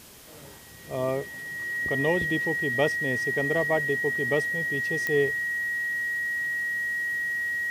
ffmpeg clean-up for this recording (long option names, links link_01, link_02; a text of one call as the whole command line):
ffmpeg -i in.wav -af "adeclick=threshold=4,bandreject=frequency=1900:width=30,afwtdn=0.0035" out.wav